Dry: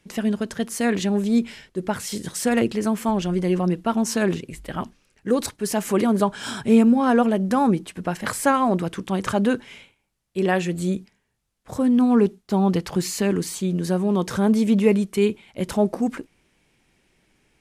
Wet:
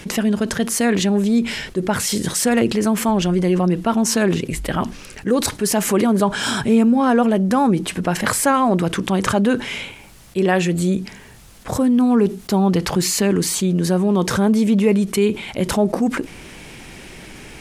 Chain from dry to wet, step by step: 11.75–12.68 high shelf 10000 Hz +6.5 dB; fast leveller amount 50%

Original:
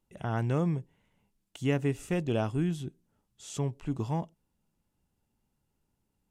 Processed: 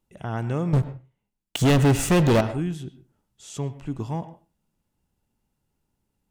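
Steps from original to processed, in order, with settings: 0.73–2.41 sample leveller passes 5; reverb RT60 0.30 s, pre-delay 94 ms, DRR 13 dB; gain +2 dB

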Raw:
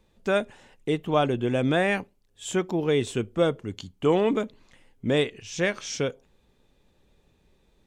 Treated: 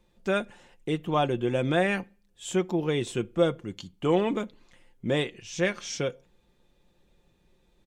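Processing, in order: comb 5.7 ms, depth 39%; on a send: reverb RT60 0.45 s, pre-delay 3 ms, DRR 21 dB; on the sum: gain -2.5 dB

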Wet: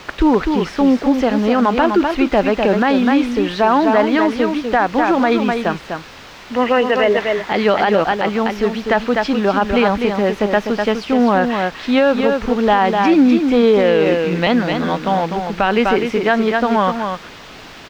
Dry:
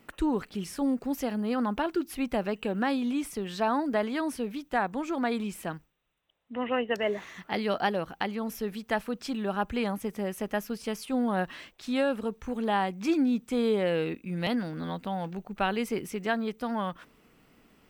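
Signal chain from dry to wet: block floating point 5-bit; bell 130 Hz -8.5 dB 1.9 oct; requantised 8-bit, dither triangular; air absorption 220 m; echo 0.25 s -6.5 dB; maximiser +22 dB; gain -3.5 dB

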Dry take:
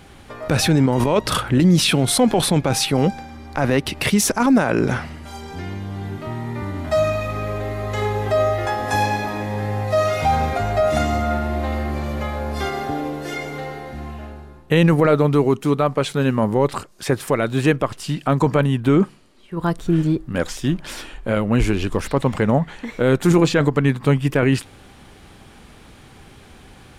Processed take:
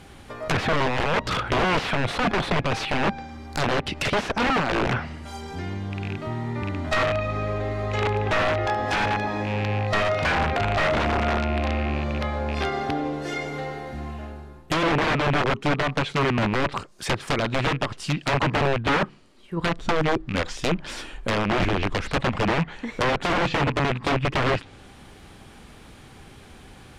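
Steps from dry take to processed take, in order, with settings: rattling part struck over -23 dBFS, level -20 dBFS; wrapped overs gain 13.5 dB; treble ducked by the level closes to 2400 Hz, closed at -16.5 dBFS; gain -1.5 dB

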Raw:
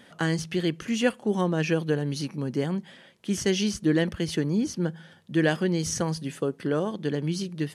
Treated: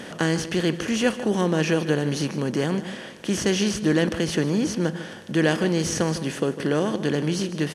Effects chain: per-bin compression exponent 0.6; outdoor echo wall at 26 m, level -13 dB

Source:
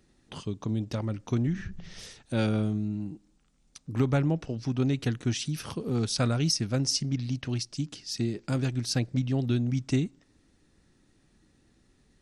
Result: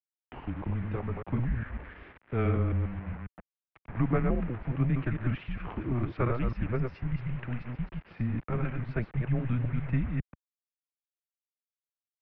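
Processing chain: reverse delay 0.136 s, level -4 dB; bit-crush 7-bit; mistuned SSB -120 Hz 160–2400 Hz

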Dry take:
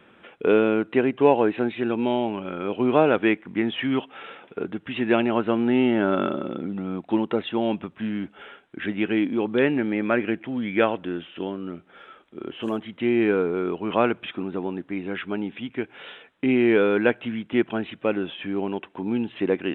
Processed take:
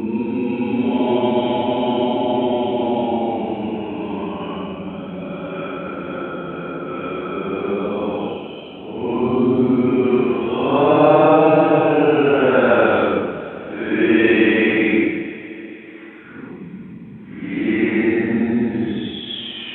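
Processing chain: Paulstretch 11×, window 0.05 s, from 1.97; echo with dull and thin repeats by turns 0.219 s, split 850 Hz, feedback 72%, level -13 dB; gain +4 dB

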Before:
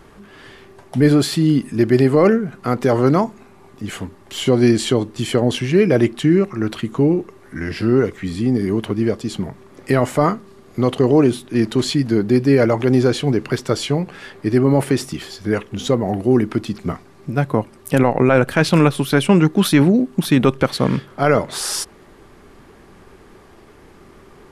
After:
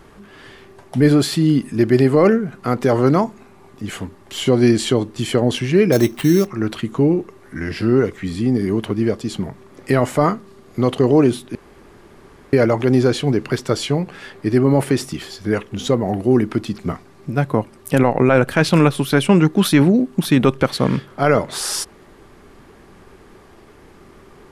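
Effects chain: 5.92–6.47 sample-rate reducer 5900 Hz, jitter 0%; 11.55–12.53 room tone

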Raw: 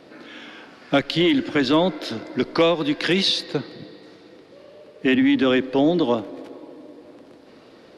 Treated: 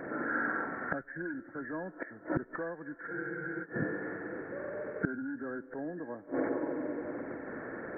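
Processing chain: nonlinear frequency compression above 1300 Hz 4:1; flipped gate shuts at -23 dBFS, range -27 dB; spectral freeze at 3.11, 0.53 s; gain +6 dB

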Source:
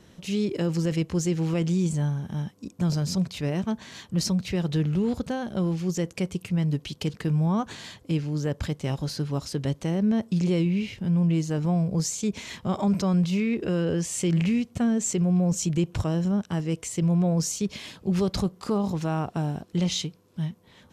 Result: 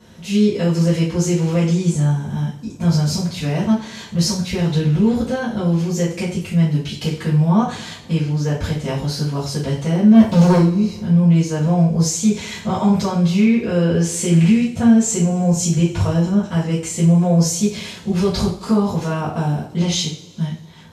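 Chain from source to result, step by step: 10.44–10.99 spectral gain 1200–3800 Hz -15 dB; 10.14–10.57 sample leveller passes 3; two-slope reverb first 0.41 s, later 1.9 s, from -22 dB, DRR -10 dB; gain -2 dB

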